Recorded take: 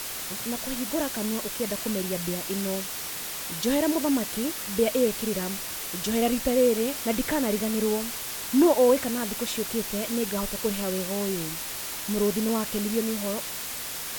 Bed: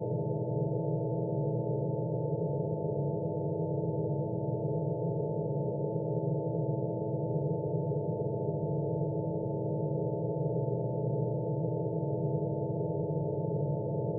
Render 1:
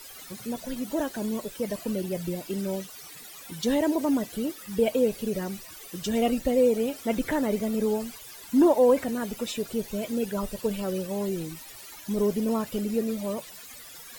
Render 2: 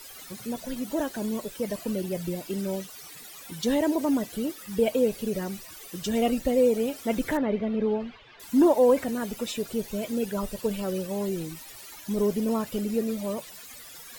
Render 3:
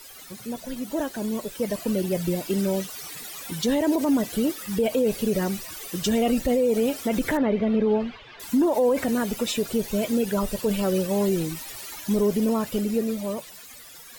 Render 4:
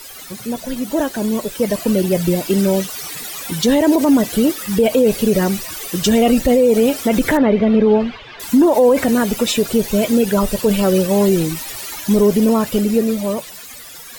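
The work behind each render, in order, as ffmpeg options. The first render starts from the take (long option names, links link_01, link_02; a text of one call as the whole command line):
ffmpeg -i in.wav -af "afftdn=noise_reduction=16:noise_floor=-35" out.wav
ffmpeg -i in.wav -filter_complex "[0:a]asettb=1/sr,asplit=3[link_01][link_02][link_03];[link_01]atrim=end=7.374[link_04];[link_02]atrim=start=7.37:end=8.4,asetpts=PTS-STARTPTS,afade=type=in:duration=0.004:curve=qsin,afade=type=out:start_time=1.026:duration=0.004:curve=qsin,lowpass=frequency=3300:width=0.5412,lowpass=frequency=3300:width=1.3066[link_05];[link_03]atrim=start=8.396[link_06];[link_04][link_05]acrossfade=duration=0.004:curve1=hsin:curve2=qsin[link_07];[link_07][link_06]acrossfade=duration=0.004:curve1=qsin:curve2=hsin" out.wav
ffmpeg -i in.wav -af "dynaudnorm=framelen=280:gausssize=13:maxgain=7dB,alimiter=limit=-14.5dB:level=0:latency=1:release=47" out.wav
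ffmpeg -i in.wav -af "volume=9dB" out.wav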